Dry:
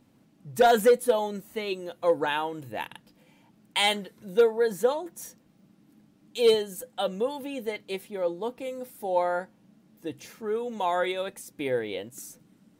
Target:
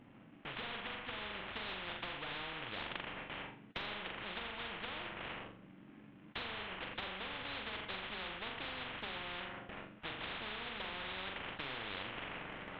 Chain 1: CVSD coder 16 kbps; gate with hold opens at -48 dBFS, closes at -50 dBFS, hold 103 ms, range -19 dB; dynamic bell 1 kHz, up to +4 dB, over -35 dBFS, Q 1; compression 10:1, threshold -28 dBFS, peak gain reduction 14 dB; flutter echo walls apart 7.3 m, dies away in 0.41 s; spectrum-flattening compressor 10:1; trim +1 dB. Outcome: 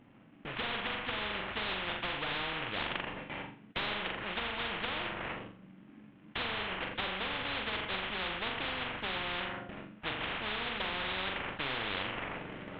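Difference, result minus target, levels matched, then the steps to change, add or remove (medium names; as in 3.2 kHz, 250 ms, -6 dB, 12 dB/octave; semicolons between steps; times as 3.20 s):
compression: peak gain reduction -8 dB
change: compression 10:1, threshold -37 dBFS, peak gain reduction 22 dB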